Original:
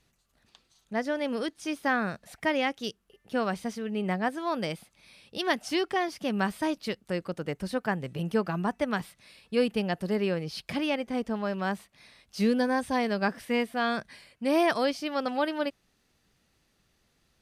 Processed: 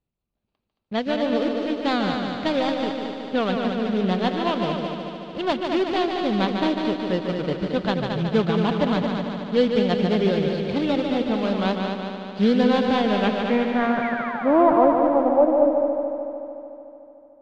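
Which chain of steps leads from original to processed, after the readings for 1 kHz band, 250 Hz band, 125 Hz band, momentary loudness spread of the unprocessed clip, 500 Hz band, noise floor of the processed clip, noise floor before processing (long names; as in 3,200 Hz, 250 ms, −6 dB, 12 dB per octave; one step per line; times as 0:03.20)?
+7.5 dB, +8.5 dB, +8.5 dB, 8 LU, +9.0 dB, −75 dBFS, −71 dBFS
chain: running median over 25 samples
noise gate −58 dBFS, range −18 dB
in parallel at −12 dB: sample-and-hold swept by an LFO 14×, swing 160% 2.9 Hz
on the sum: low-pass filter sweep 3,700 Hz → 520 Hz, 0:12.87–0:15.65
sound drawn into the spectrogram fall, 0:14.02–0:14.56, 500–2,400 Hz −38 dBFS
on a send: echo machine with several playback heads 74 ms, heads second and third, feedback 66%, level −6 dB
on the sum: level +4.5 dB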